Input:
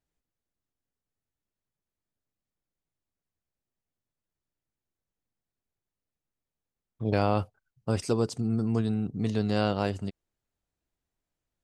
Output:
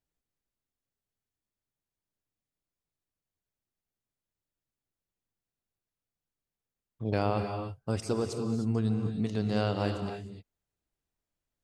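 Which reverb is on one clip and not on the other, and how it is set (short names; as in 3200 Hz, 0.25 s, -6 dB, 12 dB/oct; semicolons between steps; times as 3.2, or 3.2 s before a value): non-linear reverb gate 0.33 s rising, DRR 5.5 dB; gain -3.5 dB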